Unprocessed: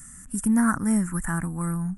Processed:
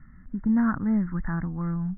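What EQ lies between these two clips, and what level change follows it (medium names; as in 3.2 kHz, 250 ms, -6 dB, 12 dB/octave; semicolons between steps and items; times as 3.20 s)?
brick-wall FIR low-pass 2.2 kHz; tilt EQ -1.5 dB/octave; -4.5 dB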